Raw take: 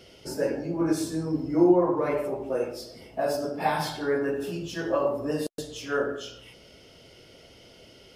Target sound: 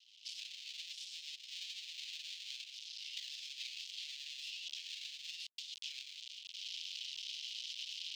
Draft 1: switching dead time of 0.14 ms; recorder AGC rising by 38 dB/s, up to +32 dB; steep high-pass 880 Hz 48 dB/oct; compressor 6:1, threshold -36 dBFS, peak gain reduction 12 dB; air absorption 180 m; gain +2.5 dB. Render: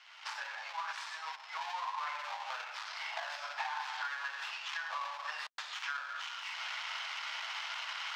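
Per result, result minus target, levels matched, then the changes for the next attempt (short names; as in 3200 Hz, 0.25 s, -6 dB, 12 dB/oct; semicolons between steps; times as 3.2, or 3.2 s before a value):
switching dead time: distortion -11 dB; 4000 Hz band -5.5 dB
change: switching dead time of 0.41 ms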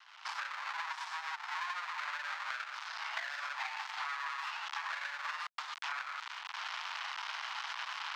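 4000 Hz band -7.5 dB
change: steep high-pass 2900 Hz 48 dB/oct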